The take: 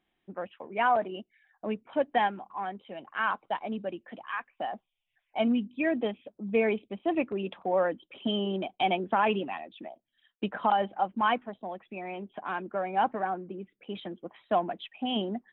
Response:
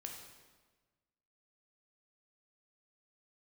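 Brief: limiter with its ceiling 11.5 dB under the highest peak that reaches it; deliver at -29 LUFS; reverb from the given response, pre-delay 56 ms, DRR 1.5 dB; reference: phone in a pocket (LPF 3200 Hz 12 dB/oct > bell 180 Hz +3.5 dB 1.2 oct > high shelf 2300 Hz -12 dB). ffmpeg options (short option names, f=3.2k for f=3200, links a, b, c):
-filter_complex "[0:a]alimiter=level_in=2dB:limit=-24dB:level=0:latency=1,volume=-2dB,asplit=2[a][b];[1:a]atrim=start_sample=2205,adelay=56[c];[b][c]afir=irnorm=-1:irlink=0,volume=1.5dB[d];[a][d]amix=inputs=2:normalize=0,lowpass=3.2k,equalizer=f=180:t=o:w=1.2:g=3.5,highshelf=f=2.3k:g=-12,volume=5.5dB"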